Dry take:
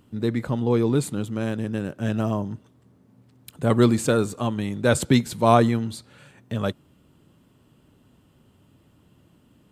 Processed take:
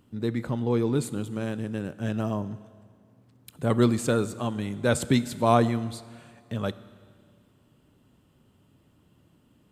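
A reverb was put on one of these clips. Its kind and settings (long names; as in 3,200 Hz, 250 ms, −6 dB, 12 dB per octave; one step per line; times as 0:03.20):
four-comb reverb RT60 2 s, combs from 26 ms, DRR 16 dB
level −4 dB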